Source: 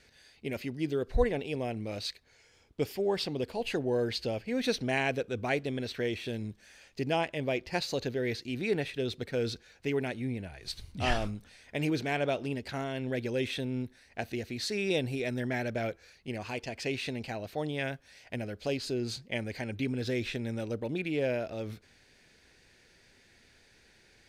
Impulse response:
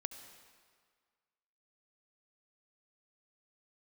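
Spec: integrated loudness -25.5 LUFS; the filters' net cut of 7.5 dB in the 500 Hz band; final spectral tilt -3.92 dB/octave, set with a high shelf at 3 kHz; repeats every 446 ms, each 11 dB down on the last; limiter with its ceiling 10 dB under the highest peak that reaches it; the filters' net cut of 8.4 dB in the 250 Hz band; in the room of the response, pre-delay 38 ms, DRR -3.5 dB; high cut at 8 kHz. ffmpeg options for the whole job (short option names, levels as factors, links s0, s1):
-filter_complex "[0:a]lowpass=8000,equalizer=f=250:t=o:g=-8.5,equalizer=f=500:t=o:g=-7,highshelf=f=3000:g=6,alimiter=limit=0.0631:level=0:latency=1,aecho=1:1:446|892|1338:0.282|0.0789|0.0221,asplit=2[s0][s1];[1:a]atrim=start_sample=2205,adelay=38[s2];[s1][s2]afir=irnorm=-1:irlink=0,volume=1.88[s3];[s0][s3]amix=inputs=2:normalize=0,volume=2"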